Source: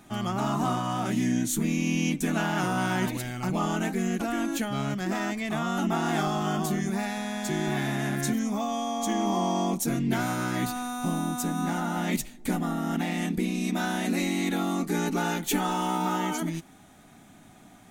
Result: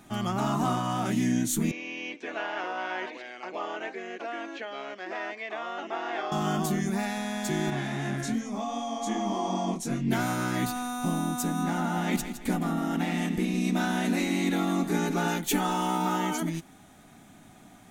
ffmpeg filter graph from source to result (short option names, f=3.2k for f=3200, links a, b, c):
-filter_complex "[0:a]asettb=1/sr,asplit=3[a][b][c];[a]atrim=end=1.714[d];[b]atrim=start=1.71:end=6.32,asetpts=PTS-STARTPTS,afade=t=in:d=0.004:c=qsin,afade=t=out:st=4.606:d=0.004:c=qsin,acrossover=split=3500[e][f];[f]acompressor=threshold=-55dB:ratio=4:attack=1:release=60[g];[e][g]amix=inputs=2:normalize=0,highpass=f=420:w=0.5412,highpass=f=420:w=1.3066,equalizer=f=830:t=q:w=4:g=-5,equalizer=f=1.3k:t=q:w=4:g=-6,equalizer=f=3.6k:t=q:w=4:g=-3,lowpass=f=5.7k:w=0.5412,lowpass=f=5.7k:w=1.3066[h];[c]atrim=start=6.316[i];[d][h]acrossfade=d=0.004:c1=hsin:c2=qsin[j];[j][i]acrossfade=d=0.004:c1=qsin:c2=hsin,asettb=1/sr,asplit=3[k][l][m];[k]atrim=end=7.704[n];[l]atrim=start=7.7:end=10.08,asetpts=PTS-STARTPTS,afade=t=in:d=0.004:c=qsin,afade=t=out:st=2.376:d=0.004:c=qsin,lowpass=8.1k,flanger=delay=20:depth=4.4:speed=2.6[o];[m]atrim=start=10.076[p];[n][o]acrossfade=d=0.004:c1=hsin:c2=qsin[q];[q][p]acrossfade=d=0.004:c1=qsin:c2=hsin,asettb=1/sr,asplit=3[r][s][t];[r]atrim=end=11.634[u];[s]atrim=start=11.63:end=15.28,asetpts=PTS-STARTPTS,afade=t=in:d=0.004:c=qsin,afade=t=out:st=3.646:d=0.004:c=qsin,highshelf=f=6.1k:g=-4,aecho=1:1:162|324|486|648:0.316|0.12|0.0457|0.0174,atrim=end_sample=160965[v];[t]atrim=start=15.276[w];[u][v]acrossfade=d=0.004:c1=hsin:c2=qsin[x];[x][w]acrossfade=d=0.004:c1=qsin:c2=hsin"